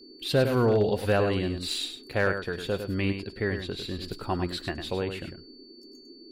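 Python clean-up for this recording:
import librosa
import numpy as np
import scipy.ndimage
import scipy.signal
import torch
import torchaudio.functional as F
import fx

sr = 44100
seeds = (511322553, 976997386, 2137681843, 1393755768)

y = fx.fix_declip(x, sr, threshold_db=-15.0)
y = fx.notch(y, sr, hz=4500.0, q=30.0)
y = fx.noise_reduce(y, sr, print_start_s=5.55, print_end_s=6.05, reduce_db=23.0)
y = fx.fix_echo_inverse(y, sr, delay_ms=102, level_db=-8.0)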